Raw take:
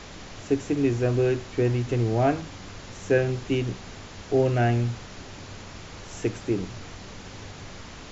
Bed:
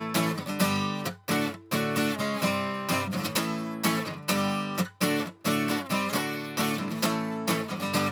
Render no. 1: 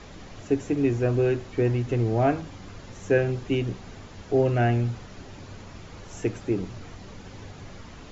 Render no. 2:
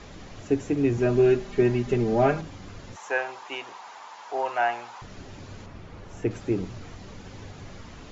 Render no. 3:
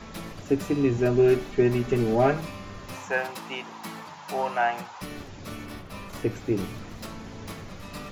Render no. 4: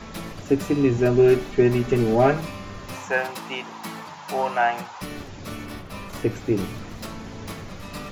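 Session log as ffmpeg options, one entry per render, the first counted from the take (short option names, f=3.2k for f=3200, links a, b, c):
-af "afftdn=nr=7:nf=-43"
-filter_complex "[0:a]asettb=1/sr,asplit=3[a][b][c];[a]atrim=end=0.974[d];[b]atrim=start=0.97:end=2.41,asetpts=PTS-STARTPTS,afade=t=in:d=0.004:c=qsin,afade=t=out:st=1.436:d=0.004:c=qsin,aecho=1:1:5:0.9,atrim=end_sample=63504[e];[c]atrim=start=2.406[f];[d][e]acrossfade=d=0.004:c1=hsin:c2=qsin[g];[g][f]acrossfade=d=0.004:c1=qsin:c2=hsin,asettb=1/sr,asplit=3[h][i][j];[h]atrim=end=2.964[k];[i]atrim=start=2.96:end=5.02,asetpts=PTS-STARTPTS,afade=t=in:d=0.004:c=qsin,afade=t=out:st=2.056:d=0.004:c=qsin,highpass=f=920:t=q:w=4.8[l];[j]atrim=start=5.016[m];[k][l]acrossfade=d=0.004:c1=hsin:c2=qsin[n];[n][m]acrossfade=d=0.004:c1=qsin:c2=hsin,asettb=1/sr,asplit=3[o][p][q];[o]atrim=end=5.664[r];[p]atrim=start=5.66:end=6.31,asetpts=PTS-STARTPTS,afade=t=in:d=0.004:c=qsin,afade=t=out:st=0.646:d=0.004:c=qsin,lowpass=f=2.2k:p=1[s];[q]atrim=start=6.306[t];[r][s]acrossfade=d=0.004:c1=hsin:c2=qsin[u];[u][t]acrossfade=d=0.004:c1=qsin:c2=hsin"
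-filter_complex "[1:a]volume=-13.5dB[a];[0:a][a]amix=inputs=2:normalize=0"
-af "volume=3.5dB"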